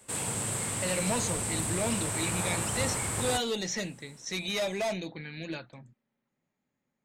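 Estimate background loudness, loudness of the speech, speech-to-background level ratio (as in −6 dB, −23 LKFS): −30.5 LKFS, −33.5 LKFS, −3.0 dB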